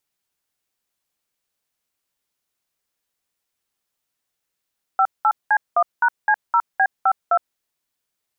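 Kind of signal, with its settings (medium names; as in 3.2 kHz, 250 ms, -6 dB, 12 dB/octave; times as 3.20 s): DTMF "58C1#C0B52", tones 63 ms, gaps 195 ms, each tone -15.5 dBFS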